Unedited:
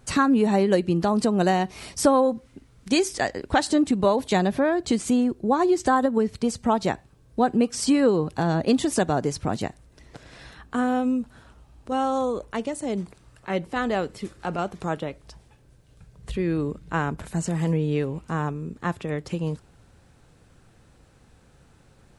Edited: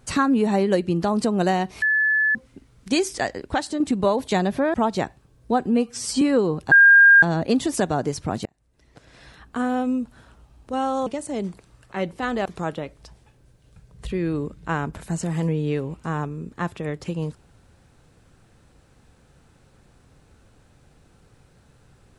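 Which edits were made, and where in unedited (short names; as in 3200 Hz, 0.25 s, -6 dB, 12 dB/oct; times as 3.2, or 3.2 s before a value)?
1.82–2.35 bleep 1730 Hz -16.5 dBFS
3.32–3.8 fade out, to -7.5 dB
4.74–6.62 cut
7.54–7.91 stretch 1.5×
8.41 add tone 1610 Hz -8 dBFS 0.51 s
9.64–11.15 fade in equal-power
12.25–12.6 cut
13.99–14.7 cut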